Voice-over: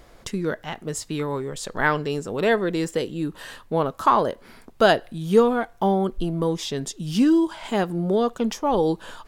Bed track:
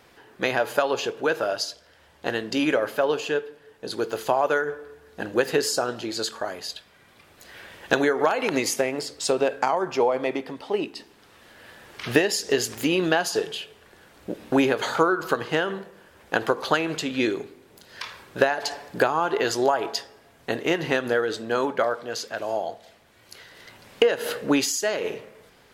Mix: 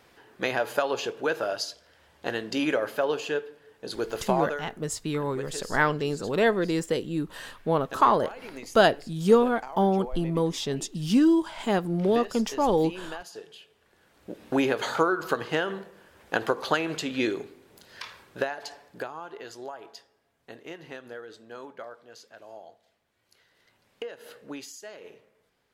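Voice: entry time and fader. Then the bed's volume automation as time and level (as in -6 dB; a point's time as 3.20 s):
3.95 s, -2.0 dB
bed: 4.41 s -3.5 dB
4.69 s -17.5 dB
13.42 s -17.5 dB
14.70 s -3 dB
17.86 s -3 dB
19.38 s -18 dB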